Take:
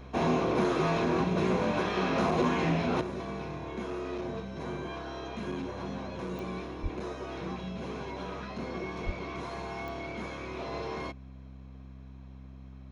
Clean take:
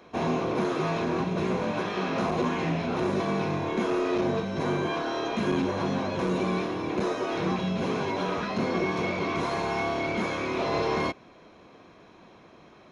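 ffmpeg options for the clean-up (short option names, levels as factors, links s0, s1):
-filter_complex "[0:a]adeclick=t=4,bandreject=f=65.5:t=h:w=4,bandreject=f=131:t=h:w=4,bandreject=f=196.5:t=h:w=4,bandreject=f=262:t=h:w=4,asplit=3[s0][s1][s2];[s0]afade=t=out:st=6.82:d=0.02[s3];[s1]highpass=f=140:w=0.5412,highpass=f=140:w=1.3066,afade=t=in:st=6.82:d=0.02,afade=t=out:st=6.94:d=0.02[s4];[s2]afade=t=in:st=6.94:d=0.02[s5];[s3][s4][s5]amix=inputs=3:normalize=0,asplit=3[s6][s7][s8];[s6]afade=t=out:st=9.05:d=0.02[s9];[s7]highpass=f=140:w=0.5412,highpass=f=140:w=1.3066,afade=t=in:st=9.05:d=0.02,afade=t=out:st=9.17:d=0.02[s10];[s8]afade=t=in:st=9.17:d=0.02[s11];[s9][s10][s11]amix=inputs=3:normalize=0,asetnsamples=n=441:p=0,asendcmd='3.01 volume volume 10dB',volume=1"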